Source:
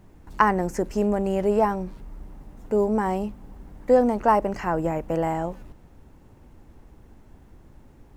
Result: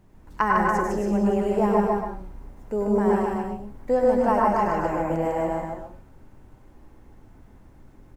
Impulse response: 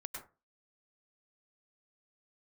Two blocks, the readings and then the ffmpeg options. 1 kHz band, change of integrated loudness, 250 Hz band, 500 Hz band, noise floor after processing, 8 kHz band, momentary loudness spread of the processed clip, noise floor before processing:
+1.0 dB, +0.5 dB, +1.5 dB, +0.5 dB, -52 dBFS, n/a, 12 LU, -52 dBFS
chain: -filter_complex "[0:a]aecho=1:1:151.6|282.8:0.708|0.447[a];[1:a]atrim=start_sample=2205[b];[a][b]afir=irnorm=-1:irlink=0"

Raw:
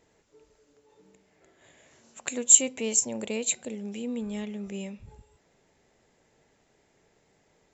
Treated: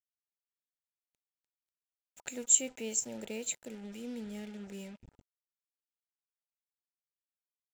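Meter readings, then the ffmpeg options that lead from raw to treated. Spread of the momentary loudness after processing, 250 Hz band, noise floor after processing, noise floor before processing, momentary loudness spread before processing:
20 LU, -8.5 dB, under -85 dBFS, -68 dBFS, 20 LU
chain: -af "acrusher=bits=6:mix=0:aa=0.5,asuperstop=centerf=1100:order=8:qfactor=5.1,volume=-8.5dB"

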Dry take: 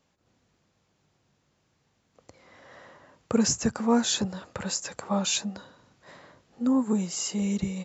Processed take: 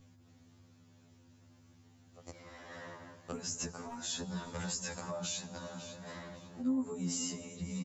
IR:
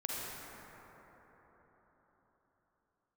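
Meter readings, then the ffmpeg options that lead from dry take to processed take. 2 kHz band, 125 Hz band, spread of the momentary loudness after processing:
-8.0 dB, -8.0 dB, 15 LU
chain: -filter_complex "[0:a]asoftclip=type=hard:threshold=-14.5dB,alimiter=level_in=0.5dB:limit=-24dB:level=0:latency=1:release=179,volume=-0.5dB,asplit=2[a][b];[b]adelay=547,lowpass=f=4k:p=1,volume=-15dB,asplit=2[c][d];[d]adelay=547,lowpass=f=4k:p=1,volume=0.41,asplit=2[e][f];[f]adelay=547,lowpass=f=4k:p=1,volume=0.41,asplit=2[g][h];[h]adelay=547,lowpass=f=4k:p=1,volume=0.41[i];[a][c][e][g][i]amix=inputs=5:normalize=0,asplit=2[j][k];[1:a]atrim=start_sample=2205,asetrate=30870,aresample=44100[l];[k][l]afir=irnorm=-1:irlink=0,volume=-18dB[m];[j][m]amix=inputs=2:normalize=0,acompressor=threshold=-37dB:ratio=6,lowshelf=f=250:g=6,aeval=exprs='val(0)+0.002*(sin(2*PI*50*n/s)+sin(2*PI*2*50*n/s)/2+sin(2*PI*3*50*n/s)/3+sin(2*PI*4*50*n/s)/4+sin(2*PI*5*50*n/s)/5)':c=same,highshelf=f=6.8k:g=7,afftfilt=real='re*2*eq(mod(b,4),0)':imag='im*2*eq(mod(b,4),0)':win_size=2048:overlap=0.75,volume=2dB"

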